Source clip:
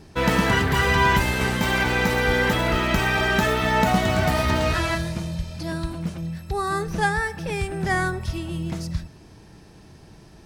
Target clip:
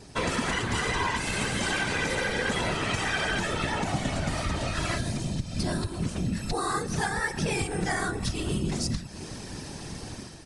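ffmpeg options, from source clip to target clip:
-filter_complex "[0:a]dynaudnorm=f=460:g=3:m=10.5dB,asettb=1/sr,asplit=3[a][b][c];[a]atrim=end=3.284[d];[b]atrim=start=3.28:end=5.87,asetpts=PTS-STARTPTS,afade=t=in:d=0.004:c=qsin,afade=t=out:st=2.586:d=0.004:c=qsin,lowshelf=f=150:g=7.5[e];[c]atrim=start=5.866[f];[d][e]acrossfade=d=0.004:c1=hsin:c2=qsin[g];[g][f]acrossfade=d=0.004:c1=qsin:c2=hsin,acompressor=threshold=-24dB:ratio=12,highpass=54,afftfilt=real='hypot(re,im)*cos(2*PI*random(0))':imag='hypot(re,im)*sin(2*PI*random(1))':win_size=512:overlap=0.75,crystalizer=i=2:c=0,aresample=22050,aresample=44100,volume=5dB" -ar 44100 -c:a libmp3lame -b:a 64k

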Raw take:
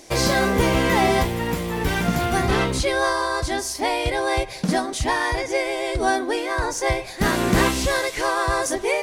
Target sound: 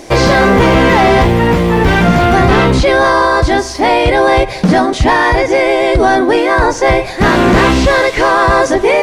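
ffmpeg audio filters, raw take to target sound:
-filter_complex "[0:a]acrossover=split=6500[a][b];[b]acompressor=threshold=-47dB:ratio=4:attack=1:release=60[c];[a][c]amix=inputs=2:normalize=0,apsyclip=19dB,highshelf=f=3.1k:g=-10.5,volume=-3dB"

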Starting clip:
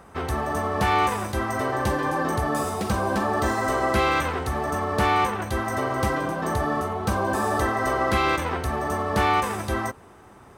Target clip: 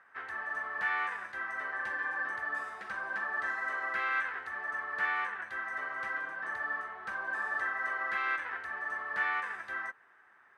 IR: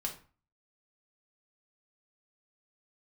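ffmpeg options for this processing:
-af "bandpass=f=1.7k:t=q:w=5.6:csg=0,volume=1dB"

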